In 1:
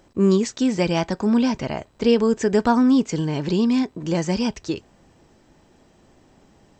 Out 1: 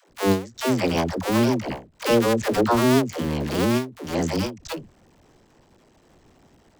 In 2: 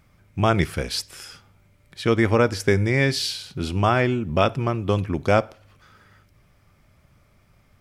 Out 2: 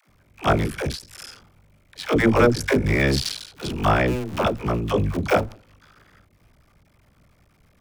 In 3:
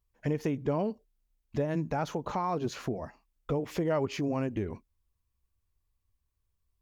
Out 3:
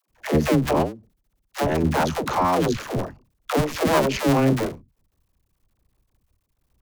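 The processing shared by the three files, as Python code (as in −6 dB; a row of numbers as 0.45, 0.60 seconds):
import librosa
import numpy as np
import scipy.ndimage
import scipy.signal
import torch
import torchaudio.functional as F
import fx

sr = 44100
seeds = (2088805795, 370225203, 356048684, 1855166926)

y = fx.cycle_switch(x, sr, every=2, mode='muted')
y = fx.dispersion(y, sr, late='lows', ms=99.0, hz=350.0)
y = fx.end_taper(y, sr, db_per_s=160.0)
y = y * 10.0 ** (-24 / 20.0) / np.sqrt(np.mean(np.square(y)))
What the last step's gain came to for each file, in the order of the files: +1.5, +3.5, +14.0 decibels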